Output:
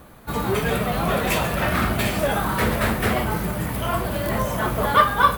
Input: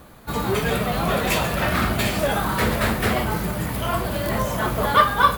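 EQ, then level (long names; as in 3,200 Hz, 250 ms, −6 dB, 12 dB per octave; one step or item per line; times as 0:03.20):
parametric band 4,500 Hz −3.5 dB 0.88 octaves
notch filter 7,000 Hz, Q 21
0.0 dB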